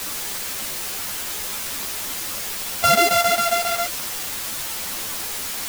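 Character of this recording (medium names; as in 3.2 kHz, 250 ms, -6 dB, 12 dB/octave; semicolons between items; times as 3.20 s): a buzz of ramps at a fixed pitch in blocks of 64 samples; chopped level 7.4 Hz, duty 75%; a quantiser's noise floor 6-bit, dither triangular; a shimmering, thickened sound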